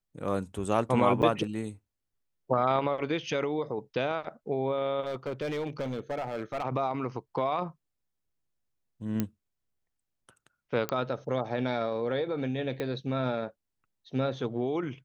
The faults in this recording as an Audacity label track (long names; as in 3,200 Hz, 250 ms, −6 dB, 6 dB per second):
1.220000	1.230000	drop-out 8.3 ms
5.050000	6.640000	clipping −28.5 dBFS
9.200000	9.200000	click −15 dBFS
10.890000	10.890000	click −15 dBFS
12.800000	12.800000	click −20 dBFS